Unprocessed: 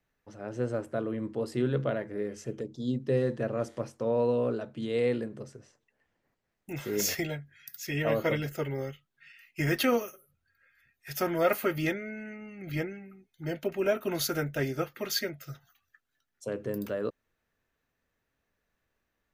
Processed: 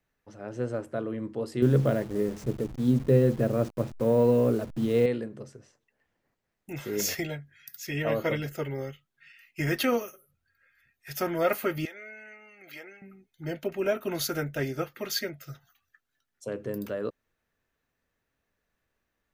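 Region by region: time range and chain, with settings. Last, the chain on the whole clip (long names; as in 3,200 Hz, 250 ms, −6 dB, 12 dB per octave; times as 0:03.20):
0:01.62–0:05.06: hold until the input has moved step −42.5 dBFS + low-shelf EQ 460 Hz +9.5 dB
0:11.85–0:13.02: high-pass filter 640 Hz + downward compressor, threshold −39 dBFS
whole clip: no processing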